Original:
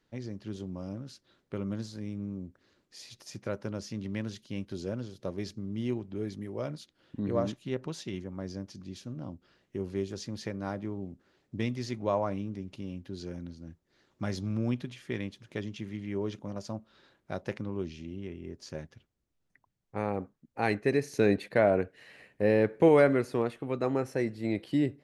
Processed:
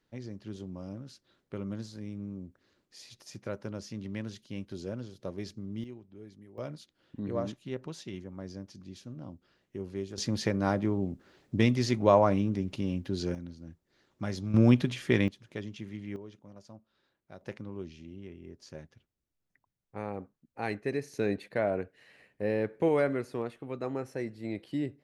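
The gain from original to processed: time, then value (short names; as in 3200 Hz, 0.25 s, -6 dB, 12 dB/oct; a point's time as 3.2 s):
-2.5 dB
from 5.84 s -13.5 dB
from 6.58 s -3.5 dB
from 10.18 s +7.5 dB
from 13.35 s -1 dB
from 14.54 s +9.5 dB
from 15.28 s -2.5 dB
from 16.16 s -13 dB
from 17.41 s -5.5 dB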